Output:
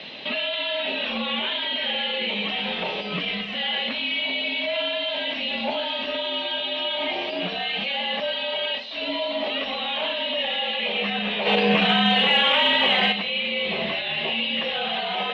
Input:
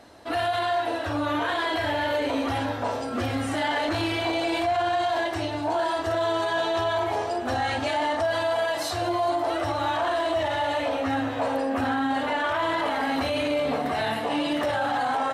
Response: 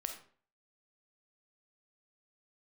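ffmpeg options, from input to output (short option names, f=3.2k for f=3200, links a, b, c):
-filter_complex "[0:a]acontrast=62,aexciter=amount=9.1:drive=8.9:freq=2.4k,alimiter=limit=-14.5dB:level=0:latency=1,highpass=f=190:t=q:w=0.5412,highpass=f=190:t=q:w=1.307,lowpass=f=3.2k:t=q:w=0.5176,lowpass=f=3.2k:t=q:w=0.7071,lowpass=f=3.2k:t=q:w=1.932,afreqshift=-66,asplit=3[a][b][c];[a]afade=t=out:st=11.45:d=0.02[d];[b]acontrast=73,afade=t=in:st=11.45:d=0.02,afade=t=out:st=13.11:d=0.02[e];[c]afade=t=in:st=13.11:d=0.02[f];[d][e][f]amix=inputs=3:normalize=0"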